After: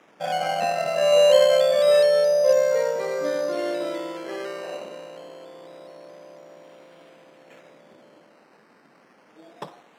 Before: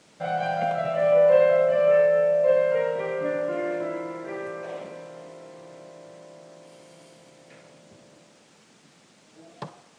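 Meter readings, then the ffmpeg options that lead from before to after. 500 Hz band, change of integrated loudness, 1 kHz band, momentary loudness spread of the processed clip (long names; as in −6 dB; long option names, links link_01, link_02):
+2.0 dB, +2.0 dB, +1.5 dB, 17 LU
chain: -af "acrusher=samples=10:mix=1:aa=0.000001:lfo=1:lforange=6:lforate=0.26,highpass=250,aemphasis=mode=reproduction:type=50fm,volume=2dB"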